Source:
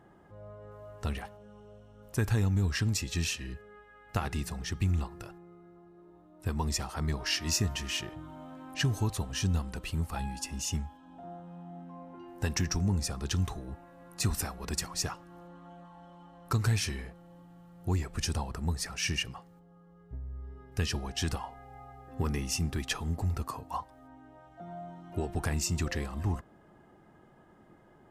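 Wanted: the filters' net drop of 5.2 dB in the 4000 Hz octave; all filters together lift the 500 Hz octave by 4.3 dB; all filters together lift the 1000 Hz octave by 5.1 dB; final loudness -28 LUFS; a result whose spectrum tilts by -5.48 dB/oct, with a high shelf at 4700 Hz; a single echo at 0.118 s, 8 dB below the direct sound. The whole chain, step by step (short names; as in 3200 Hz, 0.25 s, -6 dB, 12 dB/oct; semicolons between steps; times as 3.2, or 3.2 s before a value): bell 500 Hz +4.5 dB; bell 1000 Hz +5.5 dB; bell 4000 Hz -4 dB; high shelf 4700 Hz -7 dB; echo 0.118 s -8 dB; gain +5 dB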